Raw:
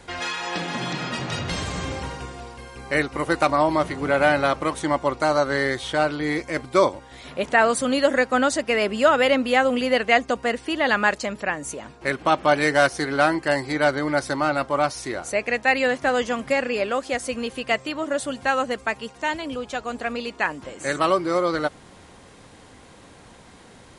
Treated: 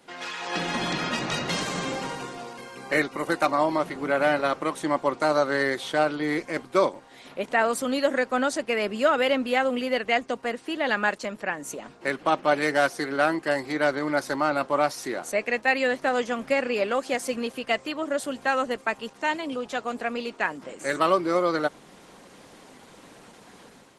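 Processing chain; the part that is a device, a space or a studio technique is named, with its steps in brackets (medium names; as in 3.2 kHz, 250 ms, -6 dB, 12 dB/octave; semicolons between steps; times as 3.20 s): video call (high-pass 160 Hz 24 dB/octave; level rider gain up to 7.5 dB; trim -6.5 dB; Opus 16 kbps 48 kHz)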